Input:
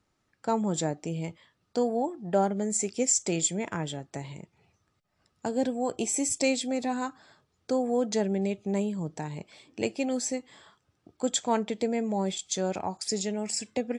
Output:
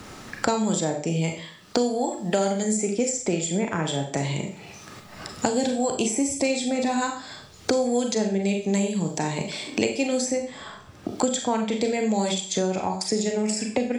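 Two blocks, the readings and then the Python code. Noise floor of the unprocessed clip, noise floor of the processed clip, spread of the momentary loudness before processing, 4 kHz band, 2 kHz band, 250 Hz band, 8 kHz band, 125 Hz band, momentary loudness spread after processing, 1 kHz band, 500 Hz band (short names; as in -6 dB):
-75 dBFS, -46 dBFS, 11 LU, +6.0 dB, +7.5 dB, +5.5 dB, +2.0 dB, +6.5 dB, 13 LU, +4.5 dB, +4.5 dB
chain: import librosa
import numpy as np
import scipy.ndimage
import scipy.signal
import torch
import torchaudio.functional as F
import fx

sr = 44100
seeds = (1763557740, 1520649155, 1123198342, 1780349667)

y = fx.rev_schroeder(x, sr, rt60_s=0.37, comb_ms=29, drr_db=3.5)
y = fx.band_squash(y, sr, depth_pct=100)
y = y * librosa.db_to_amplitude(2.5)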